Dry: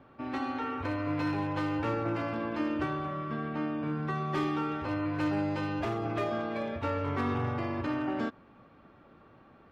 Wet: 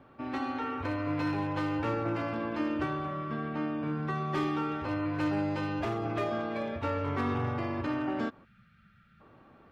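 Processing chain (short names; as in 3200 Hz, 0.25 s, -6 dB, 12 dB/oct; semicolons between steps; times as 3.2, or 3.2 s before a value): spectral gain 8.45–9.2, 220–1200 Hz -24 dB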